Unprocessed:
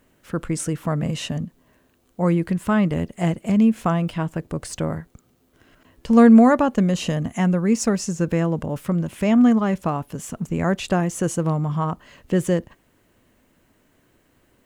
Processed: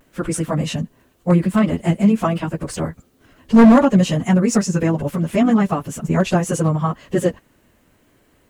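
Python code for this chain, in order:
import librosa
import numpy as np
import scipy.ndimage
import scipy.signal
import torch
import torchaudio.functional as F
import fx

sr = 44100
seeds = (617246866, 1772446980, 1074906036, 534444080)

y = fx.vibrato(x, sr, rate_hz=0.44, depth_cents=31.0)
y = fx.stretch_vocoder_free(y, sr, factor=0.58)
y = np.clip(10.0 ** (12.5 / 20.0) * y, -1.0, 1.0) / 10.0 ** (12.5 / 20.0)
y = y * librosa.db_to_amplitude(7.0)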